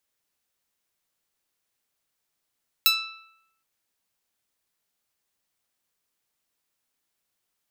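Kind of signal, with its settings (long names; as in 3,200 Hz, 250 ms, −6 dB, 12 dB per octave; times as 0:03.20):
Karplus-Strong string E6, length 0.77 s, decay 0.88 s, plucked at 0.15, bright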